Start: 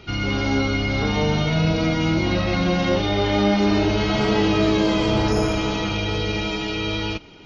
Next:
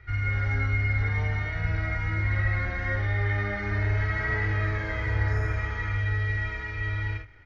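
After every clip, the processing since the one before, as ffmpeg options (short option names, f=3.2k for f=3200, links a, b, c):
-filter_complex "[0:a]firequalizer=gain_entry='entry(110,0);entry(160,-26);entry(480,-17);entry(1000,-15);entry(1900,4);entry(2700,-23)':delay=0.05:min_phase=1,asplit=2[a][b];[b]aecho=0:1:49|74:0.596|0.335[c];[a][c]amix=inputs=2:normalize=0"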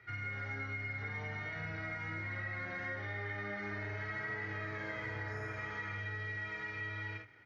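-af "highpass=f=130:w=0.5412,highpass=f=130:w=1.3066,acompressor=threshold=-34dB:ratio=4,volume=-4dB"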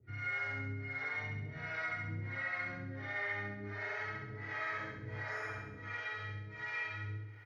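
-filter_complex "[0:a]acrossover=split=420[a][b];[a]aeval=exprs='val(0)*(1-1/2+1/2*cos(2*PI*1.4*n/s))':c=same[c];[b]aeval=exprs='val(0)*(1-1/2-1/2*cos(2*PI*1.4*n/s))':c=same[d];[c][d]amix=inputs=2:normalize=0,aecho=1:1:67|134|201|268|335|402|469:0.562|0.309|0.17|0.0936|0.0515|0.0283|0.0156,volume=3.5dB"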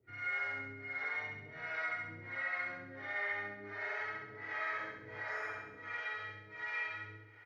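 -af "bass=f=250:g=-15,treble=f=4k:g=-5,volume=1dB"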